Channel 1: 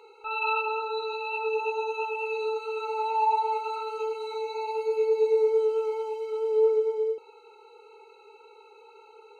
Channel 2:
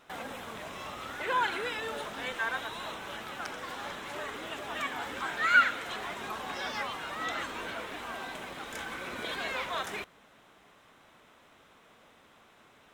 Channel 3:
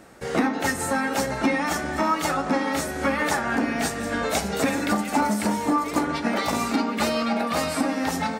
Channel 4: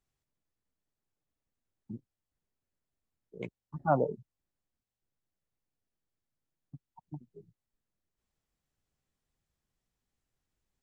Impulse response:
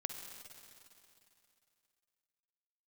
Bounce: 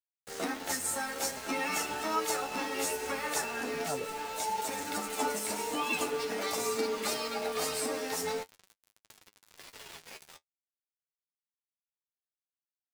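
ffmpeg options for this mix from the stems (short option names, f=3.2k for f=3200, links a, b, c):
-filter_complex "[0:a]lowpass=3.5k,acompressor=threshold=-36dB:ratio=3,adelay=1250,volume=2dB[a];[1:a]equalizer=f=15k:t=o:w=2.6:g=5.5,aeval=exprs='val(0)*sin(2*PI*1200*n/s)':c=same,highpass=360,adelay=350,volume=-8dB,asplit=2[b][c];[c]volume=-7.5dB[d];[2:a]bass=f=250:g=-9,treble=f=4k:g=11,adelay=50,volume=-8dB,asplit=2[e][f];[f]volume=-20dB[g];[3:a]volume=-8dB,asplit=2[h][i];[i]apad=whole_len=372255[j];[e][j]sidechaincompress=threshold=-41dB:ratio=4:attack=11:release=1170[k];[4:a]atrim=start_sample=2205[l];[d][g]amix=inputs=2:normalize=0[m];[m][l]afir=irnorm=-1:irlink=0[n];[a][b][k][h][n]amix=inputs=5:normalize=0,aeval=exprs='val(0)*gte(abs(val(0)),0.0158)':c=same,flanger=delay=9:depth=4:regen=40:speed=0.44:shape=triangular"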